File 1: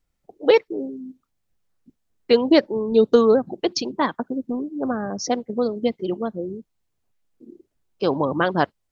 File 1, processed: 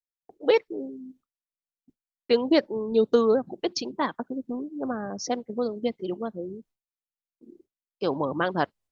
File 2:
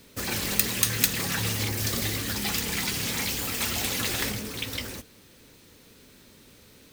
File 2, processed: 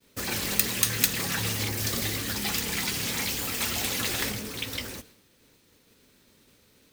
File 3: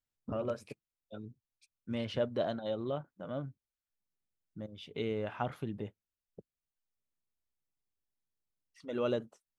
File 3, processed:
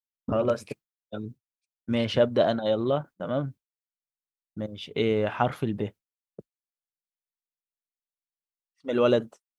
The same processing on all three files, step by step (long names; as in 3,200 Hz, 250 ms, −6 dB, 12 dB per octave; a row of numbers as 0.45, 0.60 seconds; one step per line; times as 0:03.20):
downward expander −47 dBFS
low-shelf EQ 180 Hz −2.5 dB
loudness normalisation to −27 LKFS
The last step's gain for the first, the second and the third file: −5.0, −0.5, +11.0 decibels